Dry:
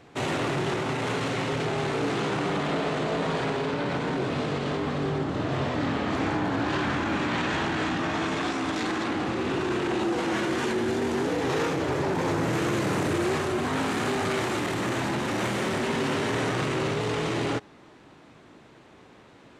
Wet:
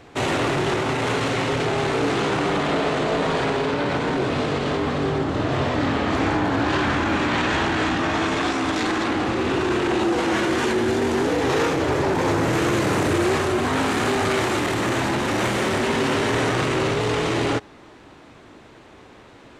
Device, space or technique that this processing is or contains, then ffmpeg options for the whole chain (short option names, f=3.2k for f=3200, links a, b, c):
low shelf boost with a cut just above: -af "lowshelf=f=90:g=6.5,equalizer=f=160:t=o:w=0.96:g=-5.5,volume=6dB"